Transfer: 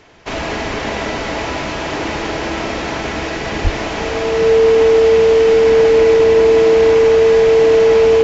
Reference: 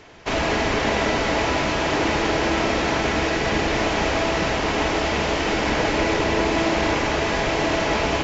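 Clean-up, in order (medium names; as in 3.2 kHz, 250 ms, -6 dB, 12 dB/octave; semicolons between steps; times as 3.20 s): band-stop 450 Hz, Q 30; de-plosive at 3.63 s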